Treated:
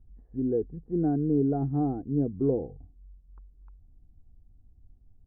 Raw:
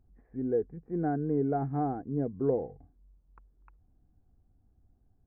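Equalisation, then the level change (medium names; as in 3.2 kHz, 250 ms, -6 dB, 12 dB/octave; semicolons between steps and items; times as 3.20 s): low-pass 1.5 kHz 12 dB/octave; dynamic bell 320 Hz, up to +6 dB, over -42 dBFS, Q 1.7; tilt EQ -3.5 dB/octave; -6.0 dB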